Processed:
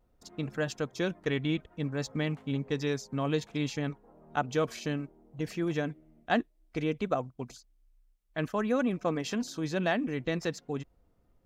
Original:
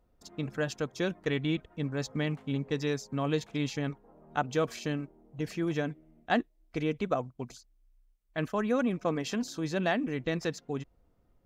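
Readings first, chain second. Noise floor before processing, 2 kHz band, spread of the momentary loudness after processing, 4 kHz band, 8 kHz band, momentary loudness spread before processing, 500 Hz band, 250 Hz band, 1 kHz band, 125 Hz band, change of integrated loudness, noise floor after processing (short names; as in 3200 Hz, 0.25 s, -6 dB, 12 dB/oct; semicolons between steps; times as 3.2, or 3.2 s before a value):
-69 dBFS, 0.0 dB, 10 LU, 0.0 dB, 0.0 dB, 10 LU, 0.0 dB, 0.0 dB, 0.0 dB, 0.0 dB, 0.0 dB, -69 dBFS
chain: vibrato 0.59 Hz 23 cents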